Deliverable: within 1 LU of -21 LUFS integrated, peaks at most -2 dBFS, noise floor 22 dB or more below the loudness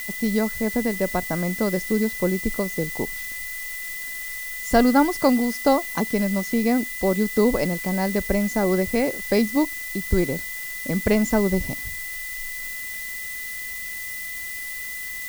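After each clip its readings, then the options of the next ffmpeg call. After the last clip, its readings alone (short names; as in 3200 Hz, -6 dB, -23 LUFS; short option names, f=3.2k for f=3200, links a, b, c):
steady tone 2000 Hz; tone level -32 dBFS; noise floor -33 dBFS; noise floor target -46 dBFS; loudness -24.0 LUFS; peak -4.5 dBFS; loudness target -21.0 LUFS
-> -af "bandreject=f=2k:w=30"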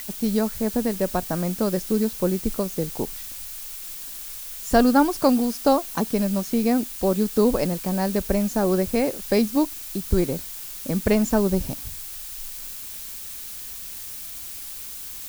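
steady tone none; noise floor -36 dBFS; noise floor target -47 dBFS
-> -af "afftdn=nr=11:nf=-36"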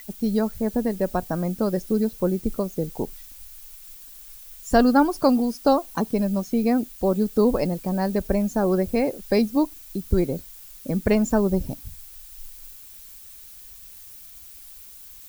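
noise floor -44 dBFS; noise floor target -46 dBFS
-> -af "afftdn=nr=6:nf=-44"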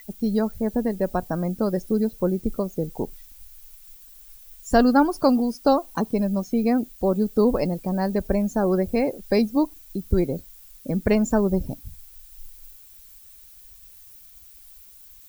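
noise floor -48 dBFS; loudness -23.5 LUFS; peak -5.0 dBFS; loudness target -21.0 LUFS
-> -af "volume=2.5dB"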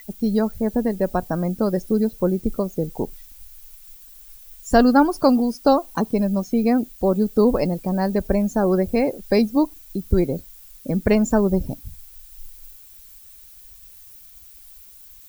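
loudness -21.0 LUFS; peak -2.5 dBFS; noise floor -46 dBFS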